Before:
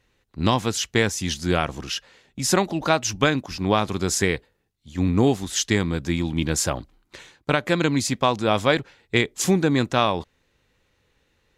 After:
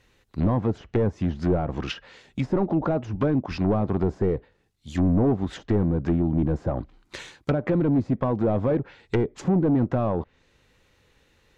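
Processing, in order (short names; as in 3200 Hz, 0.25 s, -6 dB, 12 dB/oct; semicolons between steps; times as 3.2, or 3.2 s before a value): overloaded stage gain 21 dB; treble ducked by the level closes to 630 Hz, closed at -23 dBFS; gain +4.5 dB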